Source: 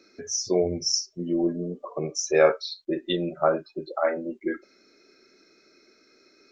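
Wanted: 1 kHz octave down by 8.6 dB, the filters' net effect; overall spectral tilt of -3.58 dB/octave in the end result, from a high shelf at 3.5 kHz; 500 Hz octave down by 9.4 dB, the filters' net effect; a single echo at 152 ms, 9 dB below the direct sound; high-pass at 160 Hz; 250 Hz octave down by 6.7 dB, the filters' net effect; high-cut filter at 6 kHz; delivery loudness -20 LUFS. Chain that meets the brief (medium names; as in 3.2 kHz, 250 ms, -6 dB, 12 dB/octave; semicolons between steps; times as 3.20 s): high-pass 160 Hz; low-pass 6 kHz; peaking EQ 250 Hz -4 dB; peaking EQ 500 Hz -8 dB; peaking EQ 1 kHz -9 dB; treble shelf 3.5 kHz -7 dB; delay 152 ms -9 dB; trim +14 dB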